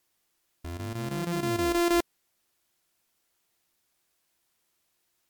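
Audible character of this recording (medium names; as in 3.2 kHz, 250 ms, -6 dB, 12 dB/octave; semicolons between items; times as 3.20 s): a buzz of ramps at a fixed pitch in blocks of 128 samples; chopped level 6.3 Hz, depth 65%, duty 85%; a quantiser's noise floor 12-bit, dither triangular; MP3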